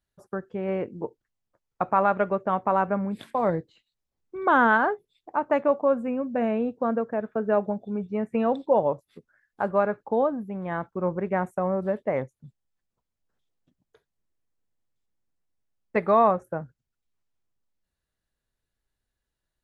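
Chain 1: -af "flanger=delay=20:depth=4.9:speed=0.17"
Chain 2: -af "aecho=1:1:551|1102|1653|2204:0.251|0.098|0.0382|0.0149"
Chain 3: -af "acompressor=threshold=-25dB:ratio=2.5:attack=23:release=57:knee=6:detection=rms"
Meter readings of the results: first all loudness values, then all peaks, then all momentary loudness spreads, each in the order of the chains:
-28.5, -26.0, -29.0 LUFS; -9.5, -8.5, -11.5 dBFS; 13, 15, 10 LU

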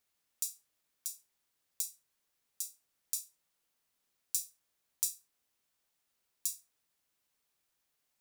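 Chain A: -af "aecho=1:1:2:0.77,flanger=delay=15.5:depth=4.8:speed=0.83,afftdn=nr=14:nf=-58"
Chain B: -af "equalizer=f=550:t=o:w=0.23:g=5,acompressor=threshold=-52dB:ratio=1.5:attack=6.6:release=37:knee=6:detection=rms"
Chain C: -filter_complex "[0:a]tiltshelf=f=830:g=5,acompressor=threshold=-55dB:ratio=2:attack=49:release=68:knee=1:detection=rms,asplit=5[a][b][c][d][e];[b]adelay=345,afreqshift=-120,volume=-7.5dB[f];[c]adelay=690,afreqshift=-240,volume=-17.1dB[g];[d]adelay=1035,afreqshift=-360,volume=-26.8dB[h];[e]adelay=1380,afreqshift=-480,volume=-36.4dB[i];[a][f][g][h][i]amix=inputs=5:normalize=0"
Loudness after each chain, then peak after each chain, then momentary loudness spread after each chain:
-40.0, -46.5, -53.0 LUFS; -12.0, -16.5, -21.0 dBFS; 13, 13, 17 LU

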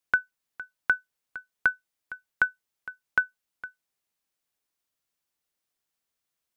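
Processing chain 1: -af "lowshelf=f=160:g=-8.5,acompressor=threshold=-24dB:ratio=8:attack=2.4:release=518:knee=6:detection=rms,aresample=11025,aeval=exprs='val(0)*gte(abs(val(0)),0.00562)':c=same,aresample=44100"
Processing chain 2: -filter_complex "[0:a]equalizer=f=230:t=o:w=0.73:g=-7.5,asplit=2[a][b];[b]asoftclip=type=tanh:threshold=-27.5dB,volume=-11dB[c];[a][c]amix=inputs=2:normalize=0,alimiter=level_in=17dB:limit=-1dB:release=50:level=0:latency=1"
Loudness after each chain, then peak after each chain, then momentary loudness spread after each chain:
-40.0, -18.5 LUFS; -14.5, -1.0 dBFS; 8, 10 LU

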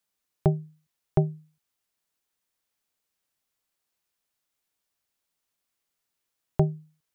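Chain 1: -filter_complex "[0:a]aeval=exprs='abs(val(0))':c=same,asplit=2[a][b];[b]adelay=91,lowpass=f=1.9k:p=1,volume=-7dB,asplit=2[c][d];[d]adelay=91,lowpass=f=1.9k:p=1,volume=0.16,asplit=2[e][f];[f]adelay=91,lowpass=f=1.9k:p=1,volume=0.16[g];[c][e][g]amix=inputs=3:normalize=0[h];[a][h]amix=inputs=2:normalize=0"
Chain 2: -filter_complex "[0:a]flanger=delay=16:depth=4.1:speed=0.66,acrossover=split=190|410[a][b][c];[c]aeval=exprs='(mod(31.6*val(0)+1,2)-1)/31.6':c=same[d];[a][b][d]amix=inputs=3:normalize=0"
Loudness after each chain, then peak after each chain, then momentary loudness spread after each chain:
-33.0, -31.0 LUFS; -8.5, -13.5 dBFS; 12, 15 LU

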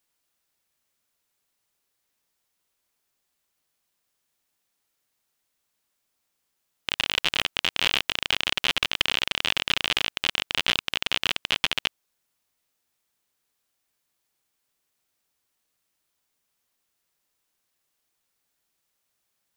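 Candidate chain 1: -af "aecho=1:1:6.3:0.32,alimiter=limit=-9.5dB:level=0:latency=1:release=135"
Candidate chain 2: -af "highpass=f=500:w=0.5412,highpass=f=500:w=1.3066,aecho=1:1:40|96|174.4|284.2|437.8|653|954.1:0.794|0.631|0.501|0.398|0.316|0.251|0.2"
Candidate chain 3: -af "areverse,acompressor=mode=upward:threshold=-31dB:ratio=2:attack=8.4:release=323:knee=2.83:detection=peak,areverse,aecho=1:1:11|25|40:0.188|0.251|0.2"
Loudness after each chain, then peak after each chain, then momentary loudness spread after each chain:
-28.0, -21.0, -24.5 LUFS; -9.5, -1.5, -3.5 dBFS; 3, 11, 3 LU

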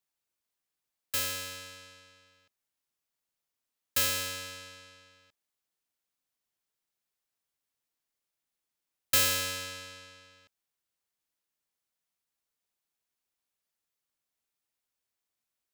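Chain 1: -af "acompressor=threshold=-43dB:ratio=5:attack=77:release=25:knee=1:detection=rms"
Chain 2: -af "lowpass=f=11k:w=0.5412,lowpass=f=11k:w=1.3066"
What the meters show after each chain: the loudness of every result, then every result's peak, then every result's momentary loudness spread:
-39.0, -31.5 LUFS; -20.0, -15.0 dBFS; 19, 21 LU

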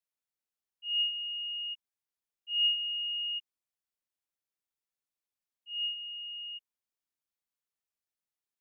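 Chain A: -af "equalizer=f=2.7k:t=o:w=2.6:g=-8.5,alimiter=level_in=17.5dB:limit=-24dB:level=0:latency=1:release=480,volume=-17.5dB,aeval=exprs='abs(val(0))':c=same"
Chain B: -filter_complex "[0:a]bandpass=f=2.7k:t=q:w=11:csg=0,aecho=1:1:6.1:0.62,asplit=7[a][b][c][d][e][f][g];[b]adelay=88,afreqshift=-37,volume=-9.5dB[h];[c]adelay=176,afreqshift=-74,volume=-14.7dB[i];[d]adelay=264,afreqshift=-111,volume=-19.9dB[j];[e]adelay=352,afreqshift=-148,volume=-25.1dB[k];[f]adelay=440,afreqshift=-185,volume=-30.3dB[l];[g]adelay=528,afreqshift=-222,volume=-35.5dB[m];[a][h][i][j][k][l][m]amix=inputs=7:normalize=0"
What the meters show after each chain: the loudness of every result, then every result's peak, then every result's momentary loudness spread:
-52.0, -42.0 LUFS; -41.5, -30.5 dBFS; 8, 18 LU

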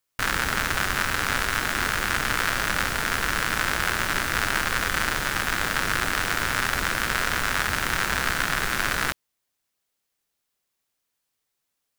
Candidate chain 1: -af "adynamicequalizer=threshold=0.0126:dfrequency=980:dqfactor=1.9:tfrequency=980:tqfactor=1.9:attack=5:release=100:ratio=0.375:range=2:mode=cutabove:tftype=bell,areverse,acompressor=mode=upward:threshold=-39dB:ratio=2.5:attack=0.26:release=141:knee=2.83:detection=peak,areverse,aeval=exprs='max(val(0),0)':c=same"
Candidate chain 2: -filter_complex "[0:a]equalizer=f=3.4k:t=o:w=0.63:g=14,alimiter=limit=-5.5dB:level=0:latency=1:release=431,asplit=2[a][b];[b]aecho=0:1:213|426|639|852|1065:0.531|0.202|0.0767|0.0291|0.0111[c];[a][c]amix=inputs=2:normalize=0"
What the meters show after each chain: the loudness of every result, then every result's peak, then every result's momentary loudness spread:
-28.0, -20.5 LUFS; -5.5, -3.0 dBFS; 1, 1 LU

